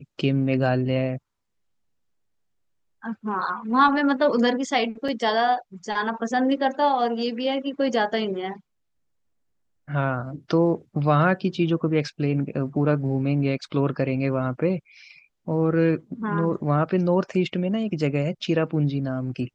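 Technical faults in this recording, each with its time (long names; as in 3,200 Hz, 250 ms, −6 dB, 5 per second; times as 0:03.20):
0:05.08: drop-out 4.4 ms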